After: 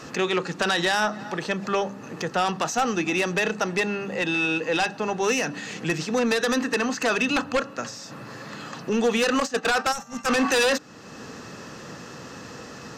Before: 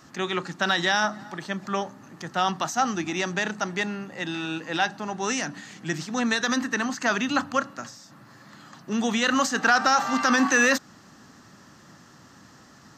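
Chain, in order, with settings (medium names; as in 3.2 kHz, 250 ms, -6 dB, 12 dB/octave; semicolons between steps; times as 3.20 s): treble shelf 8.8 kHz -9.5 dB; de-hum 99.46 Hz, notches 3; small resonant body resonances 470/2600 Hz, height 13 dB, ringing for 35 ms; compression 1.5:1, threshold -45 dBFS, peak gain reduction 12 dB; treble shelf 3.1 kHz +3.5 dB; Chebyshev shaper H 3 -24 dB, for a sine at -17 dBFS; sine folder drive 8 dB, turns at -16.5 dBFS; 9.40–10.42 s: gate -23 dBFS, range -12 dB; 9.92–10.26 s: time-frequency box 250–5300 Hz -13 dB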